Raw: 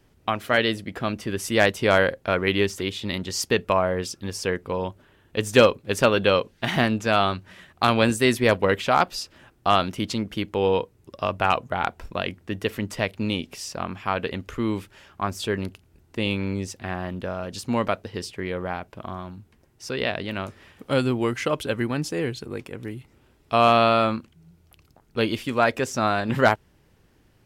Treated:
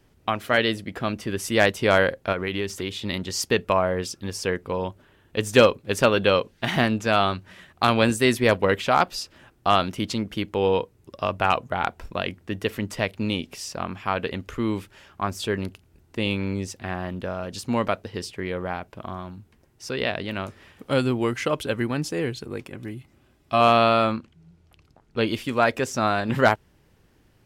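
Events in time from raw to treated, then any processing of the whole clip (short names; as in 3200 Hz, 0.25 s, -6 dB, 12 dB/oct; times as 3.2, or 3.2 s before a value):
2.32–2.91 compressor 3:1, threshold -24 dBFS
22.68–23.61 notch comb 460 Hz
24.12–25.27 air absorption 53 m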